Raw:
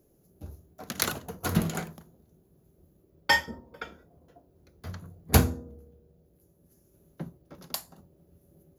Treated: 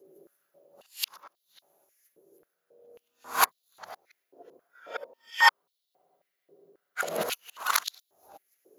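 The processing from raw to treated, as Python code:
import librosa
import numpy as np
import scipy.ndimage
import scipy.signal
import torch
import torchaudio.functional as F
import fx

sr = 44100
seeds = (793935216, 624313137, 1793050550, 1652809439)

y = np.flip(x).copy()
y = fx.spec_freeze(y, sr, seeds[0], at_s=5.56, hold_s=1.42)
y = fx.filter_held_highpass(y, sr, hz=3.7, low_hz=410.0, high_hz=3800.0)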